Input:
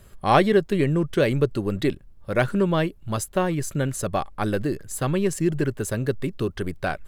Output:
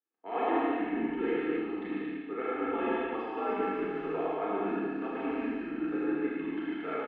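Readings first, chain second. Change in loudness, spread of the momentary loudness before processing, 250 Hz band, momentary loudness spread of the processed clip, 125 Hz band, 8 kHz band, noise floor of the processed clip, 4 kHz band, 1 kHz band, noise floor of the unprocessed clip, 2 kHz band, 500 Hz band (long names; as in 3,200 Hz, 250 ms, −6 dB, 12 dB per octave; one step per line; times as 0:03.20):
−8.5 dB, 8 LU, −6.5 dB, 5 LU, −26.5 dB, below −40 dB, −41 dBFS, −16.0 dB, −7.0 dB, −49 dBFS, −8.5 dB, −9.0 dB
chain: camcorder AGC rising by 5.5 dB per second
noise gate with hold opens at −38 dBFS
low-shelf EQ 420 Hz +3.5 dB
comb filter 2.2 ms, depth 84%
reversed playback
downward compressor 6 to 1, threshold −21 dBFS, peak gain reduction 13 dB
reversed playback
brickwall limiter −19 dBFS, peak gain reduction 8 dB
high-frequency loss of the air 56 metres
on a send: loudspeakers that aren't time-aligned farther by 36 metres −5 dB, 50 metres −5 dB, 78 metres −5 dB
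on the sum: four-comb reverb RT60 1.7 s, combs from 26 ms, DRR −5.5 dB
single-sideband voice off tune −110 Hz 420–2,900 Hz
multiband upward and downward expander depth 40%
level −7 dB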